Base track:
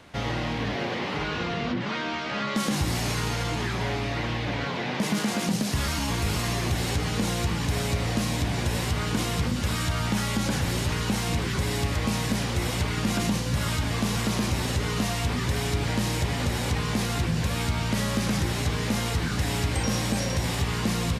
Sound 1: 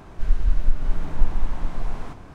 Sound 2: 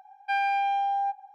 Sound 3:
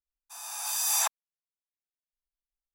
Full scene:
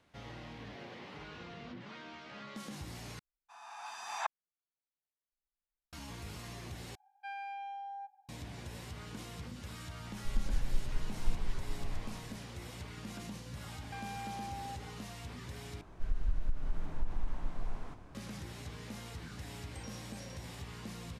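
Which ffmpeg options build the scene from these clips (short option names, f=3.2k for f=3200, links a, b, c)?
-filter_complex "[2:a]asplit=2[a][b];[1:a]asplit=2[c][d];[0:a]volume=-19dB[e];[3:a]lowpass=2.1k[f];[b]acompressor=threshold=-37dB:ratio=6:attack=3.2:release=140:knee=1:detection=peak[g];[d]acompressor=threshold=-13dB:ratio=6:attack=3.2:release=140:knee=1:detection=peak[h];[e]asplit=4[i][j][k][l];[i]atrim=end=3.194[m];[f]atrim=end=2.74,asetpts=PTS-STARTPTS,volume=-2.5dB[n];[j]atrim=start=5.926:end=6.954[o];[a]atrim=end=1.34,asetpts=PTS-STARTPTS,volume=-17dB[p];[k]atrim=start=8.286:end=15.814[q];[h]atrim=end=2.34,asetpts=PTS-STARTPTS,volume=-11dB[r];[l]atrim=start=18.146[s];[c]atrim=end=2.34,asetpts=PTS-STARTPTS,volume=-13.5dB,afade=t=in:d=0.004:c=hsin,afade=t=out:st=2.336:d=0.004:c=hsin,adelay=10060[t];[g]atrim=end=1.34,asetpts=PTS-STARTPTS,volume=-6.5dB,afade=t=in:d=0.004:c=hsin,afade=t=out:st=1.336:d=0.004:c=hsin,adelay=601524S[u];[m][n]acrossfade=d=0.004:c1=hsin:c2=hsin[v];[v][o]acrossfade=d=0.004:c1=hsin:c2=hsin[w];[w][p]acrossfade=d=0.004:c1=hsin:c2=hsin[x];[x][q]acrossfade=d=0.004:c1=hsin:c2=hsin[y];[y][r]acrossfade=d=0.004:c1=hsin:c2=hsin[z];[z][s]acrossfade=d=0.004:c1=hsin:c2=hsin[aa];[aa][t][u]amix=inputs=3:normalize=0"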